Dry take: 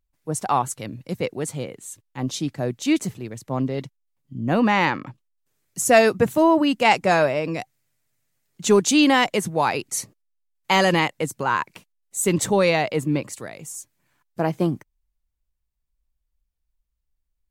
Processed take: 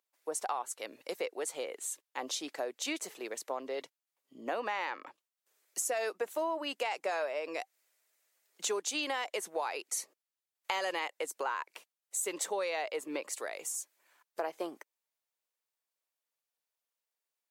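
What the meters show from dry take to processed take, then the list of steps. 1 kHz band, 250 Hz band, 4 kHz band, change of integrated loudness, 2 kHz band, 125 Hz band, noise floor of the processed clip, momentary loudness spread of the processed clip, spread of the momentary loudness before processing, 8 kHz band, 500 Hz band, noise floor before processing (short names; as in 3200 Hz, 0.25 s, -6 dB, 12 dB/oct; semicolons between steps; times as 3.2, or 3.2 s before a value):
-14.5 dB, -23.5 dB, -12.0 dB, -15.0 dB, -14.0 dB, under -40 dB, under -85 dBFS, 9 LU, 17 LU, -8.5 dB, -14.5 dB, -76 dBFS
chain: HPF 430 Hz 24 dB/oct; limiter -11 dBFS, peak gain reduction 7 dB; compressor 4:1, threshold -36 dBFS, peak gain reduction 17 dB; gain +1.5 dB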